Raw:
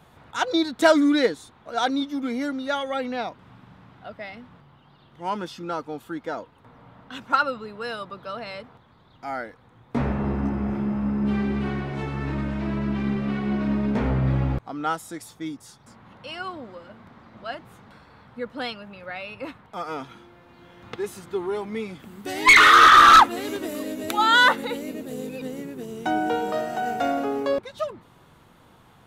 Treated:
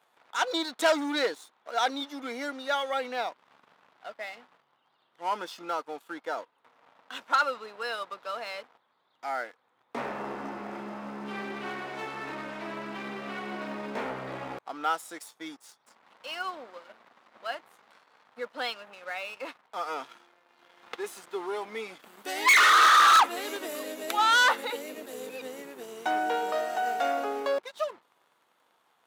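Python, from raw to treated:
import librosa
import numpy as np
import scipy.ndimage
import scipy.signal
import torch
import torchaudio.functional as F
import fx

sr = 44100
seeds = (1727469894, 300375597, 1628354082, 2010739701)

y = fx.dispersion(x, sr, late='lows', ms=42.0, hz=400.0, at=(24.7, 25.3))
y = fx.leveller(y, sr, passes=2)
y = scipy.signal.sosfilt(scipy.signal.butter(2, 530.0, 'highpass', fs=sr, output='sos'), y)
y = F.gain(torch.from_numpy(y), -8.0).numpy()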